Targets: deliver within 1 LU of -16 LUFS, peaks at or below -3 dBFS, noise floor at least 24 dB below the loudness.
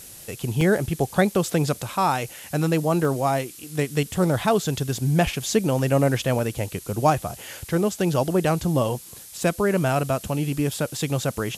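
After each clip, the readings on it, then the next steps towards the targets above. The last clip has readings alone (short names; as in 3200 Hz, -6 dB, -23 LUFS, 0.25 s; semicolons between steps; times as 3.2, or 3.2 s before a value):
dropouts 5; longest dropout 1.6 ms; noise floor -43 dBFS; noise floor target -48 dBFS; loudness -23.5 LUFS; peak -6.5 dBFS; loudness target -16.0 LUFS
-> interpolate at 0.61/3.05/5.79/6.39/10.72, 1.6 ms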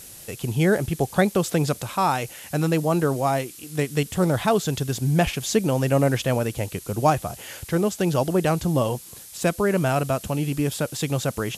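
dropouts 0; noise floor -43 dBFS; noise floor target -48 dBFS
-> noise print and reduce 6 dB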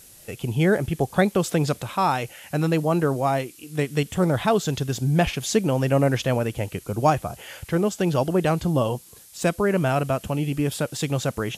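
noise floor -49 dBFS; loudness -23.5 LUFS; peak -6.5 dBFS; loudness target -16.0 LUFS
-> gain +7.5 dB; limiter -3 dBFS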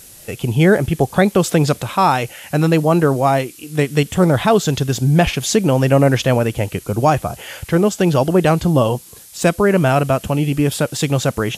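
loudness -16.5 LUFS; peak -3.0 dBFS; noise floor -41 dBFS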